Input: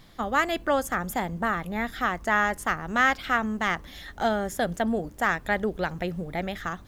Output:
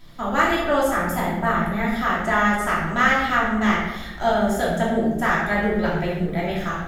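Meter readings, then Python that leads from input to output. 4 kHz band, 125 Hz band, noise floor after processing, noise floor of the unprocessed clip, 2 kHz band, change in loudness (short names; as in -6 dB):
+4.5 dB, +8.5 dB, -32 dBFS, -48 dBFS, +4.5 dB, +5.5 dB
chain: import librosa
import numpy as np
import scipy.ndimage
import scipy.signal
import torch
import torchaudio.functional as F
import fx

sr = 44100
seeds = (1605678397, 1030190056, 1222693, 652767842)

y = fx.room_shoebox(x, sr, seeds[0], volume_m3=460.0, walls='mixed', distance_m=2.9)
y = y * 10.0 ** (-2.5 / 20.0)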